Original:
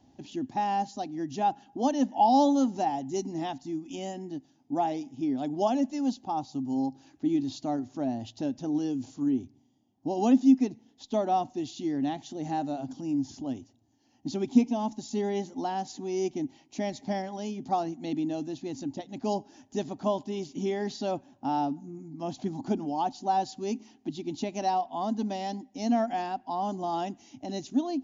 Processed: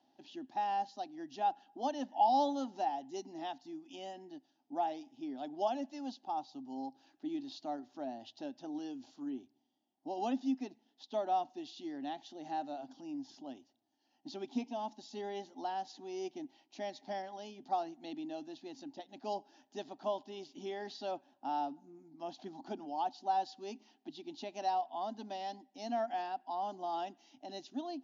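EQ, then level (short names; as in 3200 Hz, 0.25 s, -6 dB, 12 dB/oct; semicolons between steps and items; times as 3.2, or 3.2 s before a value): speaker cabinet 450–5000 Hz, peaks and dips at 470 Hz -7 dB, 1100 Hz -4 dB, 2200 Hz -6 dB; -4.5 dB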